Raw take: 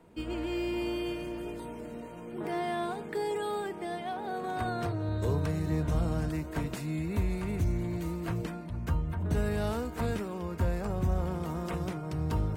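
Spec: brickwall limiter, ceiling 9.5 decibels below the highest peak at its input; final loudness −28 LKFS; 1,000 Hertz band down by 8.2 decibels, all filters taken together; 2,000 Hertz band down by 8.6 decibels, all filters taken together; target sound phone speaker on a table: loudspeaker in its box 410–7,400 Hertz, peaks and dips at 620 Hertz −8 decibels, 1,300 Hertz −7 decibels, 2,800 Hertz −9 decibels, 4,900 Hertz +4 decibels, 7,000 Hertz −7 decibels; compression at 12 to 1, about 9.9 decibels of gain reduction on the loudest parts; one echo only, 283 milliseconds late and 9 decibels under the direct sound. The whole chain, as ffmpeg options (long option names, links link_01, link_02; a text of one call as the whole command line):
ffmpeg -i in.wav -af "equalizer=frequency=1000:width_type=o:gain=-6.5,equalizer=frequency=2000:width_type=o:gain=-5,acompressor=threshold=-34dB:ratio=12,alimiter=level_in=10.5dB:limit=-24dB:level=0:latency=1,volume=-10.5dB,highpass=frequency=410:width=0.5412,highpass=frequency=410:width=1.3066,equalizer=frequency=620:width_type=q:width=4:gain=-8,equalizer=frequency=1300:width_type=q:width=4:gain=-7,equalizer=frequency=2800:width_type=q:width=4:gain=-9,equalizer=frequency=4900:width_type=q:width=4:gain=4,equalizer=frequency=7000:width_type=q:width=4:gain=-7,lowpass=frequency=7400:width=0.5412,lowpass=frequency=7400:width=1.3066,aecho=1:1:283:0.355,volume=22dB" out.wav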